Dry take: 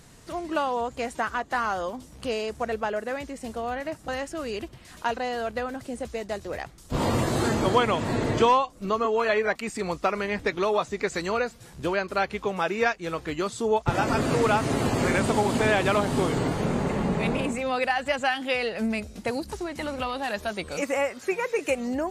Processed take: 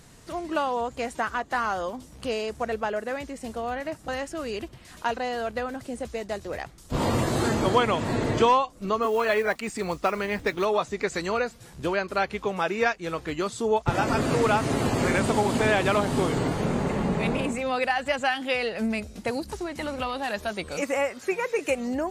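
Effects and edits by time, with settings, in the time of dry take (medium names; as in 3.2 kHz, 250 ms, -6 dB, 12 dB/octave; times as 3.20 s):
9.02–10.65 s: modulation noise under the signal 28 dB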